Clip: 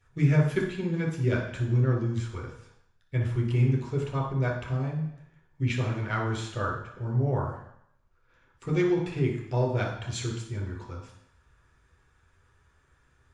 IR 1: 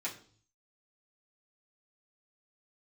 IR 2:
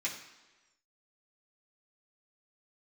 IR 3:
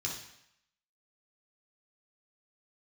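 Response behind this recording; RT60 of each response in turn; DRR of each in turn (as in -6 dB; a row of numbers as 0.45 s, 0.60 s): 3; 0.45 s, 1.2 s, 0.75 s; -8.0 dB, -6.0 dB, -2.5 dB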